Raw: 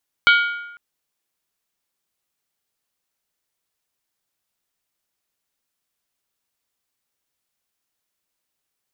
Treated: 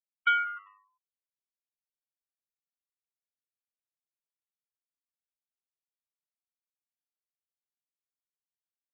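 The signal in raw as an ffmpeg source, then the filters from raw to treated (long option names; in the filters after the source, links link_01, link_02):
-f lavfi -i "aevalsrc='0.335*pow(10,-3*t/0.95)*sin(2*PI*1420*t)+0.211*pow(10,-3*t/0.752)*sin(2*PI*2263.5*t)+0.133*pow(10,-3*t/0.65)*sin(2*PI*3033.1*t)+0.0841*pow(10,-3*t/0.627)*sin(2*PI*3260.3*t)+0.0531*pow(10,-3*t/0.583)*sin(2*PI*3767.3*t)+0.0335*pow(10,-3*t/0.556)*sin(2*PI*4143.6*t)+0.0211*pow(10,-3*t/0.535)*sin(2*PI*4481.5*t)':duration=0.5:sample_rate=44100"
-filter_complex "[0:a]afftfilt=real='re*gte(hypot(re,im),0.355)':imag='im*gte(hypot(re,im),0.355)':win_size=1024:overlap=0.75,bandpass=frequency=530:width_type=q:width=1:csg=0,asplit=5[link_01][link_02][link_03][link_04][link_05];[link_02]adelay=98,afreqshift=-100,volume=-23.5dB[link_06];[link_03]adelay=196,afreqshift=-200,volume=-28.5dB[link_07];[link_04]adelay=294,afreqshift=-300,volume=-33.6dB[link_08];[link_05]adelay=392,afreqshift=-400,volume=-38.6dB[link_09];[link_01][link_06][link_07][link_08][link_09]amix=inputs=5:normalize=0"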